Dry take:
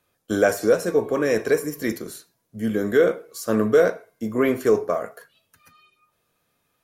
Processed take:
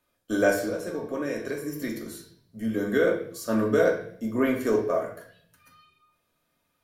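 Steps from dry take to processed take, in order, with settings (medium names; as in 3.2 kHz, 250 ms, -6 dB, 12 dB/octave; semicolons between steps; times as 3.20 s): 0.60–2.73 s: compression 4:1, threshold -24 dBFS, peak gain reduction 10 dB; reverberation RT60 0.60 s, pre-delay 3 ms, DRR 0.5 dB; trim -6 dB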